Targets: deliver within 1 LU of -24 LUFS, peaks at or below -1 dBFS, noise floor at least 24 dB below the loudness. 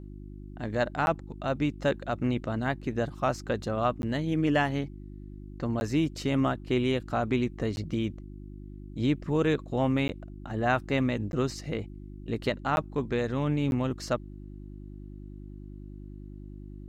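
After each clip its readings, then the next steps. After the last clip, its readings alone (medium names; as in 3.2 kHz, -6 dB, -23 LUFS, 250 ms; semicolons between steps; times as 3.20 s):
dropouts 8; longest dropout 11 ms; hum 50 Hz; highest harmonic 350 Hz; hum level -41 dBFS; loudness -29.5 LUFS; peak level -12.5 dBFS; loudness target -24.0 LUFS
-> interpolate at 1.06/4.02/5.80/7.76/10.08/11.32/12.76/13.71 s, 11 ms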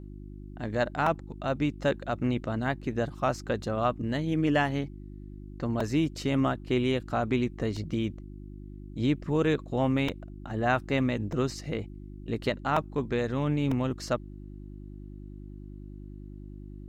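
dropouts 0; hum 50 Hz; highest harmonic 350 Hz; hum level -41 dBFS
-> de-hum 50 Hz, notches 7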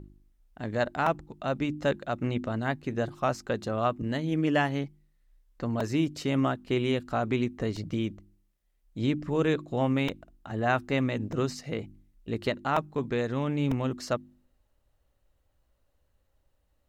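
hum not found; loudness -30.0 LUFS; peak level -13.0 dBFS; loudness target -24.0 LUFS
-> trim +6 dB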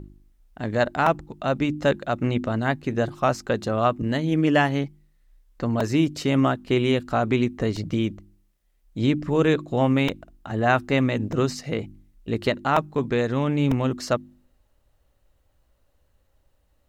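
loudness -24.0 LUFS; peak level -7.0 dBFS; noise floor -66 dBFS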